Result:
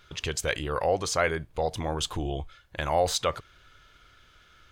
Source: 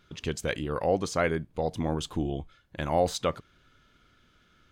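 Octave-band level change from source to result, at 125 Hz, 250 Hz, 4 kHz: -1.0, -5.0, +6.0 dB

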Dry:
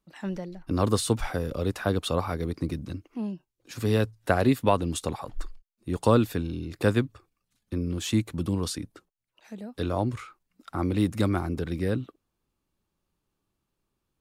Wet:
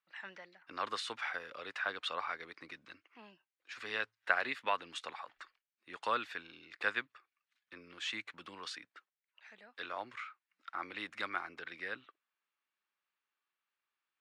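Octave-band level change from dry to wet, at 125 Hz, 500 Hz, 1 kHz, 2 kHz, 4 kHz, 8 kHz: -37.5, -18.0, -7.0, +0.5, -5.5, -18.0 dB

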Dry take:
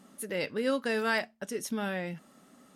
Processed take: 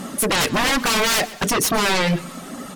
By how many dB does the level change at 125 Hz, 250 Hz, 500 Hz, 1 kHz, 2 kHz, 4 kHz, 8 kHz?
+16.5, +10.5, +8.0, +16.0, +12.5, +20.0, +21.5 dB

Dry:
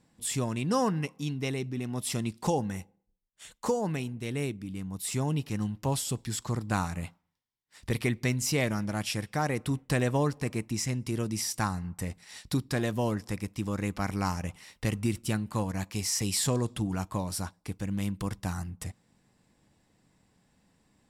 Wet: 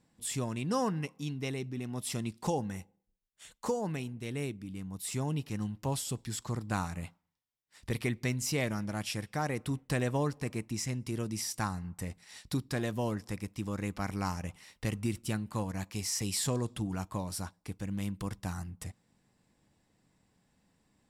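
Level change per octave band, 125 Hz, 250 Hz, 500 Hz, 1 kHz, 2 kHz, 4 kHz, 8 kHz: -4.0, -4.0, -4.0, -4.0, -4.0, -4.0, -4.0 dB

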